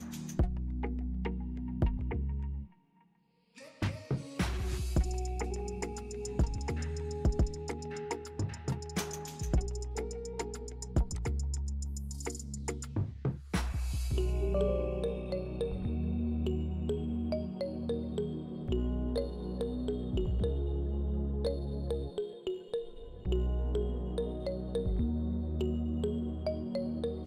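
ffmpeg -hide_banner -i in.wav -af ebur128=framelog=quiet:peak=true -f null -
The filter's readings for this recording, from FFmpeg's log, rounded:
Integrated loudness:
  I:         -35.6 LUFS
  Threshold: -45.8 LUFS
Loudness range:
  LRA:         3.2 LU
  Threshold: -55.8 LUFS
  LRA low:   -37.5 LUFS
  LRA high:  -34.3 LUFS
True peak:
  Peak:      -18.4 dBFS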